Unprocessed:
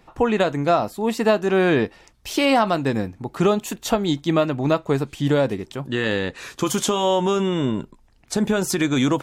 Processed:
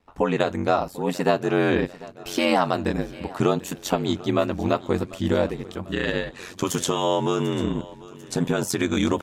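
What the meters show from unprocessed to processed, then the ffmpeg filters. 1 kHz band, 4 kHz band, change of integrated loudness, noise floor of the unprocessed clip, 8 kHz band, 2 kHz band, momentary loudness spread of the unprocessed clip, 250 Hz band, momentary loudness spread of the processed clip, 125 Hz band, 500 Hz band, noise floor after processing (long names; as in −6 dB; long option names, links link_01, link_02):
−2.5 dB, −3.0 dB, −3.0 dB, −55 dBFS, −3.0 dB, −3.0 dB, 9 LU, −3.0 dB, 9 LU, −2.5 dB, −3.0 dB, −45 dBFS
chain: -af "aeval=exprs='val(0)*sin(2*PI*45*n/s)':channel_layout=same,agate=range=-10dB:threshold=-54dB:ratio=16:detection=peak,aecho=1:1:744|1488|2232|2976|3720:0.106|0.0614|0.0356|0.0207|0.012"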